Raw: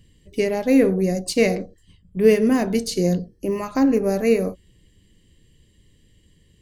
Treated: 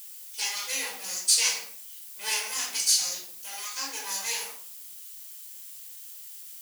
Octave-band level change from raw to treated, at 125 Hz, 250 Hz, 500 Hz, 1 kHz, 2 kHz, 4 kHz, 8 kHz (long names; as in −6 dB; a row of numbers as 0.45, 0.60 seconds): below −40 dB, −37.0 dB, −29.0 dB, −8.5 dB, −3.0 dB, +7.0 dB, +11.0 dB